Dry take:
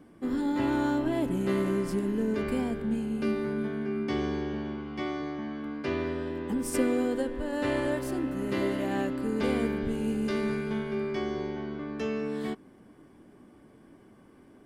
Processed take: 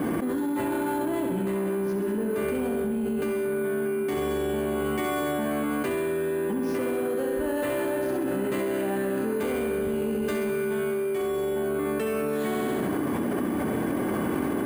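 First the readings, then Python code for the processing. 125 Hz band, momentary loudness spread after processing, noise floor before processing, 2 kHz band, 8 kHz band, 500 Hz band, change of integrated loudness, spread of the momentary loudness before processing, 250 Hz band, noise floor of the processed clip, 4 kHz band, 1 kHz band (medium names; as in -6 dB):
+1.0 dB, 0 LU, -56 dBFS, +4.0 dB, +5.0 dB, +6.0 dB, +3.0 dB, 7 LU, +1.5 dB, -28 dBFS, +1.5 dB, +5.0 dB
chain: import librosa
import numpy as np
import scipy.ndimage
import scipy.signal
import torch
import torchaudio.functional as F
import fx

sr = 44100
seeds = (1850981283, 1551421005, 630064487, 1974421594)

y = fx.lowpass(x, sr, hz=2900.0, slope=6)
y = fx.low_shelf(y, sr, hz=120.0, db=-11.0)
y = fx.room_flutter(y, sr, wall_m=11.4, rt60_s=0.79)
y = 10.0 ** (-23.5 / 20.0) * np.tanh(y / 10.0 ** (-23.5 / 20.0))
y = np.repeat(scipy.signal.resample_poly(y, 1, 4), 4)[:len(y)]
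y = scipy.signal.sosfilt(scipy.signal.butter(2, 40.0, 'highpass', fs=sr, output='sos'), y)
y = fx.env_flatten(y, sr, amount_pct=100)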